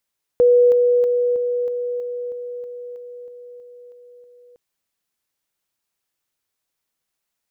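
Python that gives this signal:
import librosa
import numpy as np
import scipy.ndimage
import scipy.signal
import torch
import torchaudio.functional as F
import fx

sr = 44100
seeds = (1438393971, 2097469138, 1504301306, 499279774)

y = fx.level_ladder(sr, hz=488.0, from_db=-9.5, step_db=-3.0, steps=13, dwell_s=0.32, gap_s=0.0)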